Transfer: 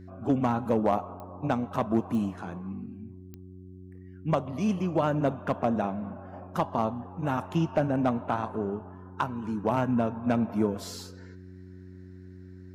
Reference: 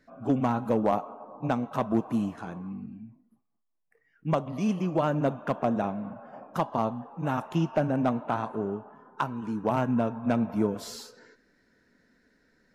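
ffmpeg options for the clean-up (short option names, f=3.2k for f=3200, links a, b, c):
-af "adeclick=t=4,bandreject=f=92.3:t=h:w=4,bandreject=f=184.6:t=h:w=4,bandreject=f=276.9:t=h:w=4,bandreject=f=369.2:t=h:w=4"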